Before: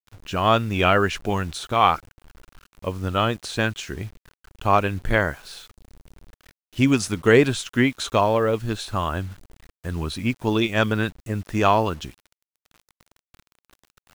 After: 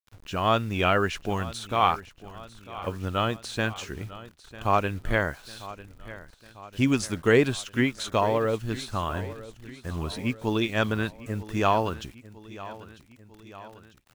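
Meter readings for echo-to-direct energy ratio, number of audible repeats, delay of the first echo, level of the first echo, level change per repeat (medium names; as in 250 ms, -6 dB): -15.5 dB, 3, 948 ms, -17.0 dB, -5.0 dB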